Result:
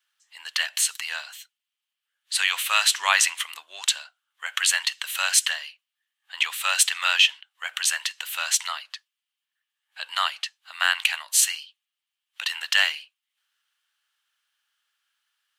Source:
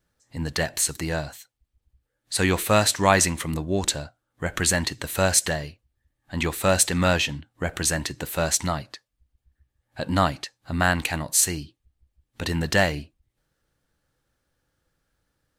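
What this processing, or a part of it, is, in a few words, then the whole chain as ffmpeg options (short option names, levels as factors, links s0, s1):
headphones lying on a table: -filter_complex "[0:a]highpass=130,highpass=f=1100:w=0.5412,highpass=f=1100:w=1.3066,equalizer=f=3000:t=o:w=0.54:g=11.5,asettb=1/sr,asplit=3[s0][s1][s2];[s0]atrim=end=2.914[s3];[s1]atrim=start=2.91:end=3.35,asetpts=PTS-STARTPTS,afade=t=in:d=0.004:c=qsin,afade=t=out:st=0.436:d=0.004:c=qsin,lowshelf=f=480:g=8[s4];[s2]atrim=start=3.346[s5];[s3][s4]acrossfade=d=0.004:c1=hsin:c2=qsin[s6];[s6][s5]acrossfade=d=0.004:c1=qsin:c2=hsin"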